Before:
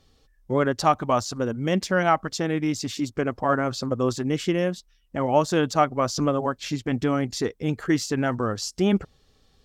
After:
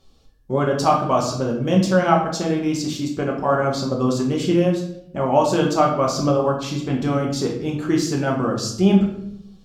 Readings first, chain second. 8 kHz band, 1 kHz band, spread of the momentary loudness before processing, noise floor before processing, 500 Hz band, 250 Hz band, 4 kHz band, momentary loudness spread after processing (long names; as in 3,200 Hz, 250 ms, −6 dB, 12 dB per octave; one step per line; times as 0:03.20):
+2.5 dB, +3.5 dB, 7 LU, −63 dBFS, +4.5 dB, +5.0 dB, +3.0 dB, 8 LU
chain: parametric band 1,900 Hz −8.5 dB 0.38 octaves
rectangular room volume 170 cubic metres, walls mixed, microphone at 1.1 metres